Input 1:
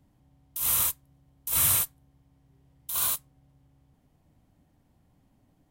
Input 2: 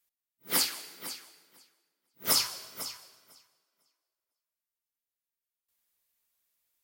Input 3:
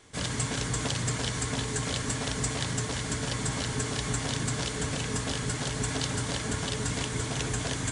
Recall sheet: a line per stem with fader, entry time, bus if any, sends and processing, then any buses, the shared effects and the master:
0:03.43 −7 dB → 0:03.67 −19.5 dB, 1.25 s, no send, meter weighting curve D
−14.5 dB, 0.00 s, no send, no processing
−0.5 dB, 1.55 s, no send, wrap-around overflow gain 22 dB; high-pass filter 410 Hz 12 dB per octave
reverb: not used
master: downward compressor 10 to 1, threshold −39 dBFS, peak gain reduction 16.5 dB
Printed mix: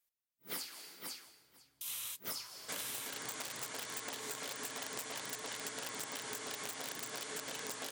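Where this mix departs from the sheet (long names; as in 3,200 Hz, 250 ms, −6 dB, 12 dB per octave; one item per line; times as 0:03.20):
stem 1 −7.0 dB → −13.0 dB
stem 2 −14.5 dB → −4.5 dB
stem 3: entry 1.55 s → 2.55 s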